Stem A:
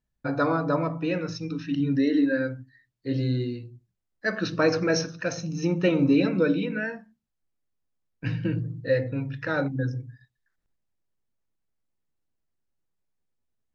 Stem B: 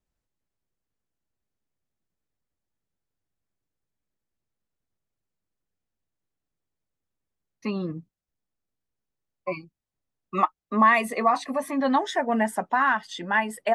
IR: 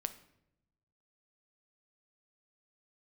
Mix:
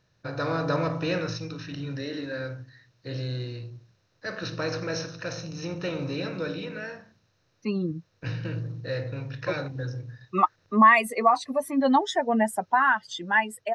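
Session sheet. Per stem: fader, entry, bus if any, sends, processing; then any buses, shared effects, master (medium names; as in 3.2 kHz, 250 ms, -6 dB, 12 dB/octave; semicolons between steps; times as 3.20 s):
1.16 s -12 dB -> 1.53 s -18.5 dB, 0.00 s, no send, spectral levelling over time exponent 0.6; fifteen-band graphic EQ 100 Hz +11 dB, 250 Hz -9 dB, 4 kHz +7 dB
-5.0 dB, 0.00 s, no send, expander on every frequency bin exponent 1.5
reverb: none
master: level rider gain up to 8.5 dB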